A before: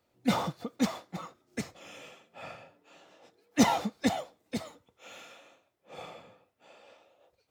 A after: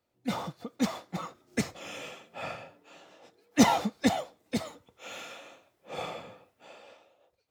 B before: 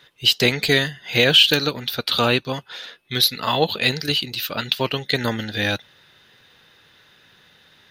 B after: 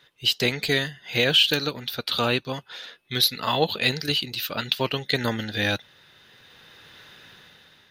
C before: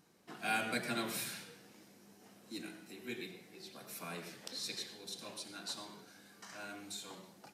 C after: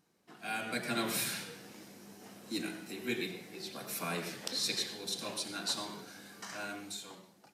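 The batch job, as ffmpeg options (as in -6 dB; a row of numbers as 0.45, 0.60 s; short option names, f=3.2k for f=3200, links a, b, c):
-af "dynaudnorm=f=280:g=7:m=13.5dB,volume=-5.5dB"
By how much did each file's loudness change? 0.0, -4.5, +5.0 LU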